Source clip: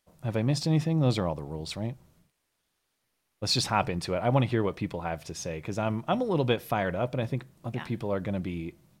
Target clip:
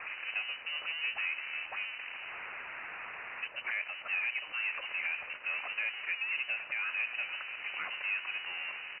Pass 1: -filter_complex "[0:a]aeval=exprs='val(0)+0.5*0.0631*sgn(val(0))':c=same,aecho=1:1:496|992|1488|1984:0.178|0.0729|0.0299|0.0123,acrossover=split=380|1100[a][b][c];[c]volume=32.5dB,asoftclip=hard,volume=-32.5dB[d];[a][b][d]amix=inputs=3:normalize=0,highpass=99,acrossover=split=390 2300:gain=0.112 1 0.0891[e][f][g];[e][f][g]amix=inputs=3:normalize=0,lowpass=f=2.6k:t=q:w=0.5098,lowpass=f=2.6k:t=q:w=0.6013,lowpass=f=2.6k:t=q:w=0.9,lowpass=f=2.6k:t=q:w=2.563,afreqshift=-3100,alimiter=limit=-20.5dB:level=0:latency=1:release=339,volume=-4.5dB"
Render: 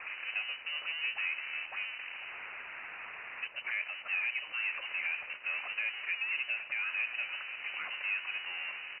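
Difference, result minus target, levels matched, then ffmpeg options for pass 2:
overloaded stage: distortion +8 dB
-filter_complex "[0:a]aeval=exprs='val(0)+0.5*0.0631*sgn(val(0))':c=same,aecho=1:1:496|992|1488|1984:0.178|0.0729|0.0299|0.0123,acrossover=split=380|1100[a][b][c];[c]volume=24.5dB,asoftclip=hard,volume=-24.5dB[d];[a][b][d]amix=inputs=3:normalize=0,highpass=99,acrossover=split=390 2300:gain=0.112 1 0.0891[e][f][g];[e][f][g]amix=inputs=3:normalize=0,lowpass=f=2.6k:t=q:w=0.5098,lowpass=f=2.6k:t=q:w=0.6013,lowpass=f=2.6k:t=q:w=0.9,lowpass=f=2.6k:t=q:w=2.563,afreqshift=-3100,alimiter=limit=-20.5dB:level=0:latency=1:release=339,volume=-4.5dB"

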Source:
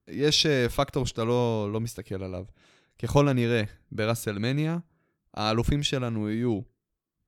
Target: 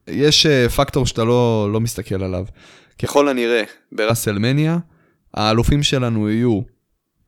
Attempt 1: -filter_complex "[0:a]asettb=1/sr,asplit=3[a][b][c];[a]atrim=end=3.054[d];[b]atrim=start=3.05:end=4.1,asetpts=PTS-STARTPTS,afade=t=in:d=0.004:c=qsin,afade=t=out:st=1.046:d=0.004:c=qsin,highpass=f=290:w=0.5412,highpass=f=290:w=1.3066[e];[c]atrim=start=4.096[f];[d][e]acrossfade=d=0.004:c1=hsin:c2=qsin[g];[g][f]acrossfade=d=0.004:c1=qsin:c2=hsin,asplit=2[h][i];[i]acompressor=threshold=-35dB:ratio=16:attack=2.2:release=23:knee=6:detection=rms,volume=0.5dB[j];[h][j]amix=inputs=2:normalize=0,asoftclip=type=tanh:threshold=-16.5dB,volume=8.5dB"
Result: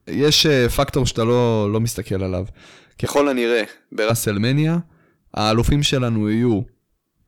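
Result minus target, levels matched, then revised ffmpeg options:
soft clip: distortion +14 dB
-filter_complex "[0:a]asettb=1/sr,asplit=3[a][b][c];[a]atrim=end=3.054[d];[b]atrim=start=3.05:end=4.1,asetpts=PTS-STARTPTS,afade=t=in:d=0.004:c=qsin,afade=t=out:st=1.046:d=0.004:c=qsin,highpass=f=290:w=0.5412,highpass=f=290:w=1.3066[e];[c]atrim=start=4.096[f];[d][e]acrossfade=d=0.004:c1=hsin:c2=qsin[g];[g][f]acrossfade=d=0.004:c1=qsin:c2=hsin,asplit=2[h][i];[i]acompressor=threshold=-35dB:ratio=16:attack=2.2:release=23:knee=6:detection=rms,volume=0.5dB[j];[h][j]amix=inputs=2:normalize=0,asoftclip=type=tanh:threshold=-7dB,volume=8.5dB"

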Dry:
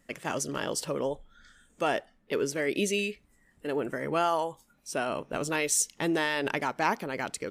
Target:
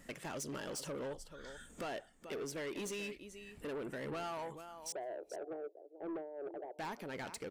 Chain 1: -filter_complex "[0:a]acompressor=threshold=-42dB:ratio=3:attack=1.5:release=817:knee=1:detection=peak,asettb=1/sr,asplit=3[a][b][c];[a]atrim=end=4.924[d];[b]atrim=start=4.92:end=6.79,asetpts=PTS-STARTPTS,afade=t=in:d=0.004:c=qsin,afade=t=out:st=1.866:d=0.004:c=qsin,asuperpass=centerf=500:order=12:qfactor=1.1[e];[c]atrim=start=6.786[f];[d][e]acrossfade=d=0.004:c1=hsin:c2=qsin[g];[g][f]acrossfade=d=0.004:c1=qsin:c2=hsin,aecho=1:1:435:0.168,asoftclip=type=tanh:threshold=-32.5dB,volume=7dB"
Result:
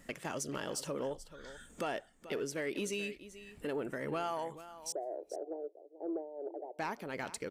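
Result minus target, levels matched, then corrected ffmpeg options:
soft clip: distortion -15 dB
-filter_complex "[0:a]acompressor=threshold=-42dB:ratio=3:attack=1.5:release=817:knee=1:detection=peak,asettb=1/sr,asplit=3[a][b][c];[a]atrim=end=4.924[d];[b]atrim=start=4.92:end=6.79,asetpts=PTS-STARTPTS,afade=t=in:d=0.004:c=qsin,afade=t=out:st=1.866:d=0.004:c=qsin,asuperpass=centerf=500:order=12:qfactor=1.1[e];[c]atrim=start=6.786[f];[d][e]acrossfade=d=0.004:c1=hsin:c2=qsin[g];[g][f]acrossfade=d=0.004:c1=qsin:c2=hsin,aecho=1:1:435:0.168,asoftclip=type=tanh:threshold=-44.5dB,volume=7dB"

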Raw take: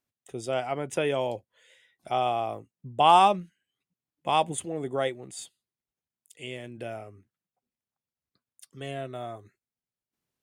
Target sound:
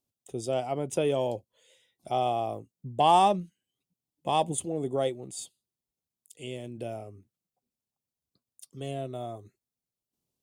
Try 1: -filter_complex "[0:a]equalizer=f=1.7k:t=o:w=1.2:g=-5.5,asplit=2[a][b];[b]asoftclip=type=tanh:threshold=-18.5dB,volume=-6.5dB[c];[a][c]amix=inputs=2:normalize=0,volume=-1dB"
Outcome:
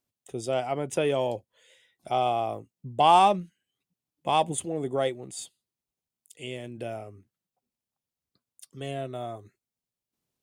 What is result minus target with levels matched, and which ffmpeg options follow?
2000 Hz band +3.5 dB
-filter_complex "[0:a]equalizer=f=1.7k:t=o:w=1.2:g=-15,asplit=2[a][b];[b]asoftclip=type=tanh:threshold=-18.5dB,volume=-6.5dB[c];[a][c]amix=inputs=2:normalize=0,volume=-1dB"

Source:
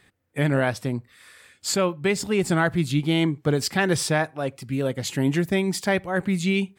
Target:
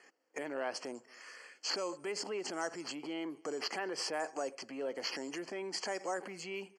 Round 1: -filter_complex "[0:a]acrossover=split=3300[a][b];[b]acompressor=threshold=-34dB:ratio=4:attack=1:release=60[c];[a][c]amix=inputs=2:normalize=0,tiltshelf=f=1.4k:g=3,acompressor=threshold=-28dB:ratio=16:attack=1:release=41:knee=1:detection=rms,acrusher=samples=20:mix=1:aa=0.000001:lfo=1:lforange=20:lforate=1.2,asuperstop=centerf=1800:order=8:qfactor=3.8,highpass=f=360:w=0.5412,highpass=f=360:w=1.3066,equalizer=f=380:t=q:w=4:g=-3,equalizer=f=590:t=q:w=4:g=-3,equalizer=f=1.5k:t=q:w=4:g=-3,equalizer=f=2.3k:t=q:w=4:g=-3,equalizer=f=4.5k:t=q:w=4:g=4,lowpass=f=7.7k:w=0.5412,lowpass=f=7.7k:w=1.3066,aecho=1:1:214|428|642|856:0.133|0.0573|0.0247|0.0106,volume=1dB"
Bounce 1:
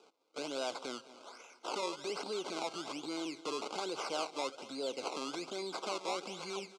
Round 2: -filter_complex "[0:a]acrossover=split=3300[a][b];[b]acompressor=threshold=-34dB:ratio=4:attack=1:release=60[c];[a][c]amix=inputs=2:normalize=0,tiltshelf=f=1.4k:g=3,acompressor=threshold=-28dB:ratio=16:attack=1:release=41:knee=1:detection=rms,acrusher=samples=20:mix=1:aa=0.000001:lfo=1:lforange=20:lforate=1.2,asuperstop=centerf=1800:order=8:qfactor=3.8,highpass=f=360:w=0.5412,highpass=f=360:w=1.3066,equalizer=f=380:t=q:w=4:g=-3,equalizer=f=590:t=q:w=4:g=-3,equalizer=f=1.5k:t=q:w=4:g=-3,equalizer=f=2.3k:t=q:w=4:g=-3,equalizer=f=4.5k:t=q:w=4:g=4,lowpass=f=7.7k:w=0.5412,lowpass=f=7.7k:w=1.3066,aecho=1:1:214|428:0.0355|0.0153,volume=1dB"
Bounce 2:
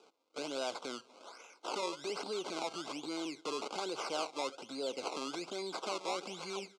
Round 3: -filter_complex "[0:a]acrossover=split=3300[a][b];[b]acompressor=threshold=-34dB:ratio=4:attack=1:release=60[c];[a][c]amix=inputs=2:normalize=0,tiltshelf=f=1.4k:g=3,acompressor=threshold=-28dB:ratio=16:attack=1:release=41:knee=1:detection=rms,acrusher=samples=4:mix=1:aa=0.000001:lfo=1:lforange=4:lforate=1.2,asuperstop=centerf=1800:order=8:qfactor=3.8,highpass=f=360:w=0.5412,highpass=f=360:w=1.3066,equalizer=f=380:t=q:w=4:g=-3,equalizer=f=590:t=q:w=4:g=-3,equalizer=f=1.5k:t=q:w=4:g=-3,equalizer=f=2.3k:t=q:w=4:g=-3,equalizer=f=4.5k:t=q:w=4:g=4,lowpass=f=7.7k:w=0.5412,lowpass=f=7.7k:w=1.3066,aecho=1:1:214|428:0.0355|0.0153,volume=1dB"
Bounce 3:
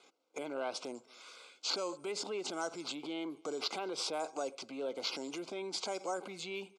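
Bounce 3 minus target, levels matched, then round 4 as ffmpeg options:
2000 Hz band -4.0 dB
-filter_complex "[0:a]acrossover=split=3300[a][b];[b]acompressor=threshold=-34dB:ratio=4:attack=1:release=60[c];[a][c]amix=inputs=2:normalize=0,tiltshelf=f=1.4k:g=3,acompressor=threshold=-28dB:ratio=16:attack=1:release=41:knee=1:detection=rms,acrusher=samples=4:mix=1:aa=0.000001:lfo=1:lforange=4:lforate=1.2,asuperstop=centerf=3700:order=8:qfactor=3.8,highpass=f=360:w=0.5412,highpass=f=360:w=1.3066,equalizer=f=380:t=q:w=4:g=-3,equalizer=f=590:t=q:w=4:g=-3,equalizer=f=1.5k:t=q:w=4:g=-3,equalizer=f=2.3k:t=q:w=4:g=-3,equalizer=f=4.5k:t=q:w=4:g=4,lowpass=f=7.7k:w=0.5412,lowpass=f=7.7k:w=1.3066,aecho=1:1:214|428:0.0355|0.0153,volume=1dB"

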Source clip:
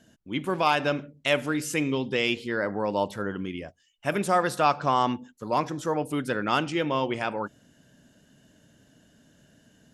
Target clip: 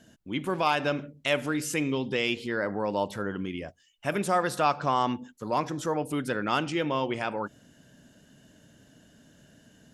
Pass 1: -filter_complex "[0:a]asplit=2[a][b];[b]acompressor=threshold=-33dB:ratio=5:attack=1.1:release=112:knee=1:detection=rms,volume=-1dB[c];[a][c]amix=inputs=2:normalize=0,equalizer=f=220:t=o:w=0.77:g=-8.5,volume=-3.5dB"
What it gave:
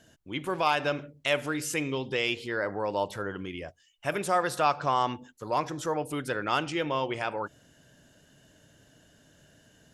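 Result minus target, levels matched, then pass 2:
250 Hz band -3.5 dB
-filter_complex "[0:a]asplit=2[a][b];[b]acompressor=threshold=-33dB:ratio=5:attack=1.1:release=112:knee=1:detection=rms,volume=-1dB[c];[a][c]amix=inputs=2:normalize=0,volume=-3.5dB"

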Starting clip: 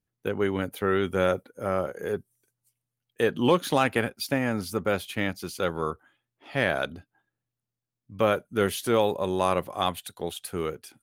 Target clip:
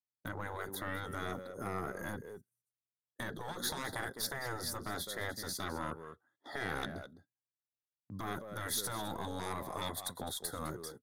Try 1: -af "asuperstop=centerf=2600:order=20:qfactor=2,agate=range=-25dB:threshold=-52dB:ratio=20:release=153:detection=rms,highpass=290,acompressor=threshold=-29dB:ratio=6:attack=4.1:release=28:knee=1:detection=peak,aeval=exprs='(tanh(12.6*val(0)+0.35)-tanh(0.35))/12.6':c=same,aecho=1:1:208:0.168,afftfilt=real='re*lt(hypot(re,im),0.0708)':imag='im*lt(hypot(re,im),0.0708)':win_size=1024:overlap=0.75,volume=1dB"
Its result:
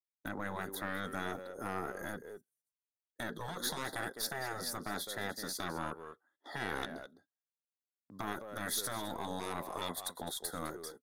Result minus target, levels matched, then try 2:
125 Hz band -3.5 dB
-af "asuperstop=centerf=2600:order=20:qfactor=2,agate=range=-25dB:threshold=-52dB:ratio=20:release=153:detection=rms,highpass=89,acompressor=threshold=-29dB:ratio=6:attack=4.1:release=28:knee=1:detection=peak,aeval=exprs='(tanh(12.6*val(0)+0.35)-tanh(0.35))/12.6':c=same,aecho=1:1:208:0.168,afftfilt=real='re*lt(hypot(re,im),0.0708)':imag='im*lt(hypot(re,im),0.0708)':win_size=1024:overlap=0.75,volume=1dB"

